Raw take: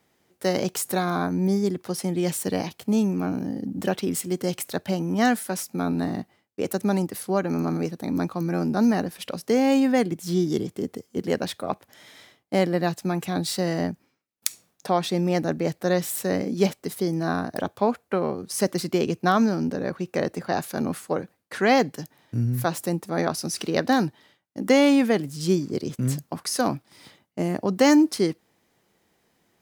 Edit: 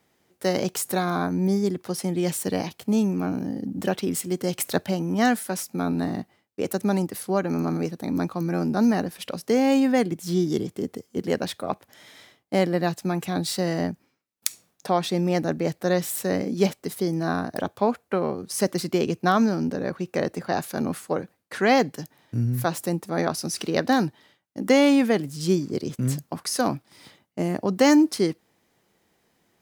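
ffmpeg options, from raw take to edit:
ffmpeg -i in.wav -filter_complex "[0:a]asplit=3[link_01][link_02][link_03];[link_01]atrim=end=4.592[link_04];[link_02]atrim=start=4.588:end=4.862,asetpts=PTS-STARTPTS,volume=4.5dB[link_05];[link_03]atrim=start=4.858[link_06];[link_04][link_05]acrossfade=duration=0.004:curve1=hsin:curve2=hsin[link_07];[link_07][link_06]acrossfade=duration=0.004:curve1=hsin:curve2=hsin" out.wav

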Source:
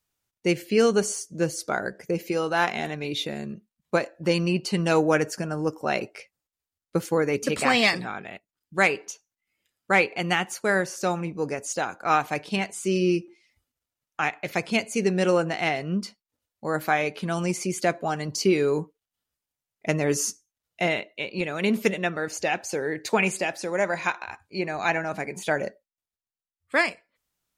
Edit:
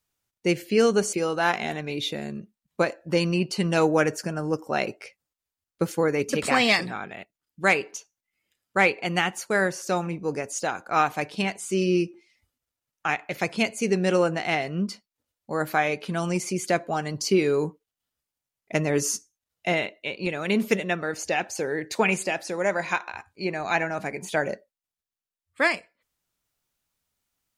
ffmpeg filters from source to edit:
ffmpeg -i in.wav -filter_complex "[0:a]asplit=2[link_01][link_02];[link_01]atrim=end=1.132[link_03];[link_02]atrim=start=2.268[link_04];[link_03][link_04]acrossfade=duration=0.004:curve1=hsin:curve2=hsin" out.wav

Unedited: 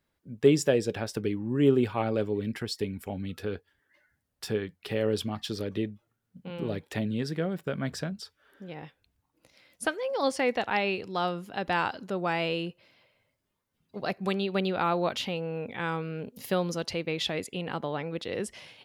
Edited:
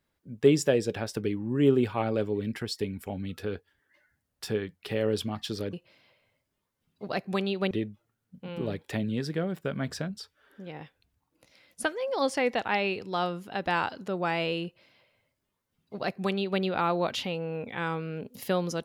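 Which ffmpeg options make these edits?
ffmpeg -i in.wav -filter_complex "[0:a]asplit=3[link_01][link_02][link_03];[link_01]atrim=end=5.732[link_04];[link_02]atrim=start=12.658:end=14.642[link_05];[link_03]atrim=start=5.728[link_06];[link_04][link_05]acrossfade=duration=0.004:curve1=hsin:curve2=hsin[link_07];[link_07][link_06]acrossfade=duration=0.004:curve1=hsin:curve2=hsin" out.wav

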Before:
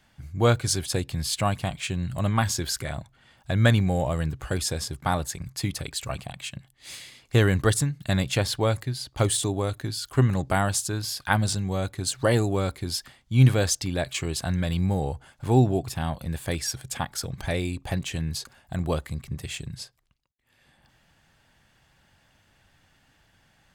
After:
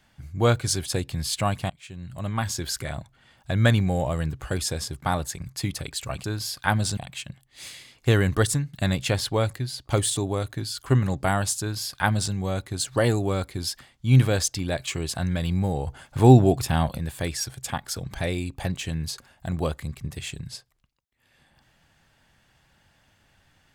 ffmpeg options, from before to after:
ffmpeg -i in.wav -filter_complex "[0:a]asplit=6[link_01][link_02][link_03][link_04][link_05][link_06];[link_01]atrim=end=1.7,asetpts=PTS-STARTPTS,afade=type=out:start_time=1.696:duration=0.004:curve=hsin:silence=0.0944061[link_07];[link_02]atrim=start=1.7:end=6.242,asetpts=PTS-STARTPTS,afade=type=in:duration=1.13:silence=0.0944061[link_08];[link_03]atrim=start=10.868:end=11.602[link_09];[link_04]atrim=start=6.238:end=15.142[link_10];[link_05]atrim=start=15.138:end=16.252,asetpts=PTS-STARTPTS,volume=6dB[link_11];[link_06]atrim=start=16.248[link_12];[link_07][link_08]concat=n=2:v=0:a=1[link_13];[link_13][link_09]acrossfade=duration=0.004:curve1=hsin:curve2=hsin[link_14];[link_14][link_10]acrossfade=duration=0.004:curve1=hsin:curve2=hsin[link_15];[link_15][link_11]acrossfade=duration=0.004:curve1=hsin:curve2=hsin[link_16];[link_16][link_12]acrossfade=duration=0.004:curve1=hsin:curve2=hsin" out.wav

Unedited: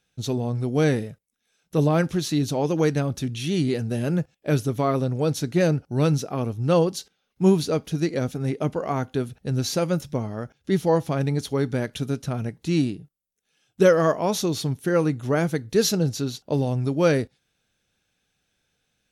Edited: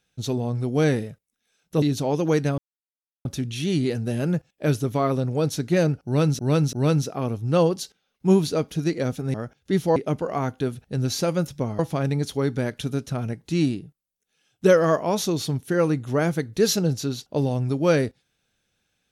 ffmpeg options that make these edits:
ffmpeg -i in.wav -filter_complex "[0:a]asplit=8[link_01][link_02][link_03][link_04][link_05][link_06][link_07][link_08];[link_01]atrim=end=1.822[link_09];[link_02]atrim=start=2.328:end=3.09,asetpts=PTS-STARTPTS,afade=type=out:start_time=0.758:duration=0.004:curve=hsin,apad=pad_dur=0.67[link_10];[link_03]atrim=start=3.09:end=6.232,asetpts=PTS-STARTPTS,afade=type=in:duration=0.004:curve=hsin[link_11];[link_04]atrim=start=5.888:end=6.232[link_12];[link_05]atrim=start=5.888:end=8.502[link_13];[link_06]atrim=start=10.328:end=10.952[link_14];[link_07]atrim=start=8.498:end=10.332[link_15];[link_08]atrim=start=10.948[link_16];[link_10][link_11]concat=n=2:v=0:a=1[link_17];[link_09][link_17]acrossfade=duration=0.004:curve1=hsin:curve2=hsin[link_18];[link_18][link_12]acrossfade=duration=0.004:curve1=hsin:curve2=hsin[link_19];[link_19][link_13]acrossfade=duration=0.004:curve1=hsin:curve2=hsin[link_20];[link_20][link_14]acrossfade=duration=0.004:curve1=hsin:curve2=hsin[link_21];[link_21][link_15]acrossfade=duration=0.004:curve1=hsin:curve2=hsin[link_22];[link_22][link_16]acrossfade=duration=0.004:curve1=hsin:curve2=hsin" out.wav

